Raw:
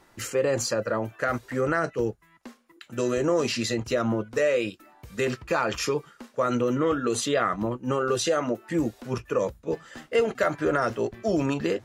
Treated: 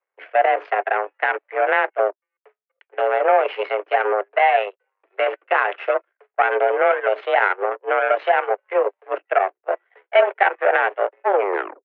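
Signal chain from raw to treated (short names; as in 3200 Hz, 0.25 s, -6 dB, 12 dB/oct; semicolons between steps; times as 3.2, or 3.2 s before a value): tape stop at the end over 0.51 s; in parallel at -1 dB: limiter -18.5 dBFS, peak gain reduction 7 dB; on the sum: power-law curve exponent 2; mistuned SSB +190 Hz 210–2400 Hz; gain +9 dB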